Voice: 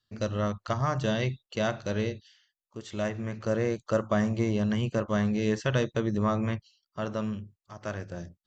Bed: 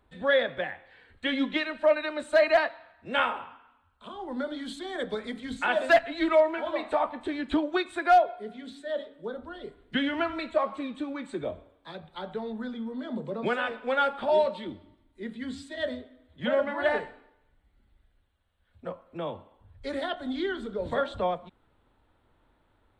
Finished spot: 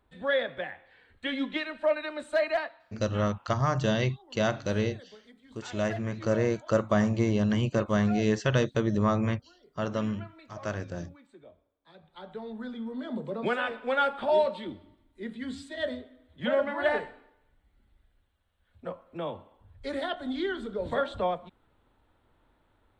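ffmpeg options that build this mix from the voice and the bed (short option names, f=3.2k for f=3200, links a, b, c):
-filter_complex "[0:a]adelay=2800,volume=1.5dB[a];[1:a]volume=15.5dB,afade=t=out:st=2.22:d=0.95:silence=0.158489,afade=t=in:st=11.77:d=1.18:silence=0.112202[b];[a][b]amix=inputs=2:normalize=0"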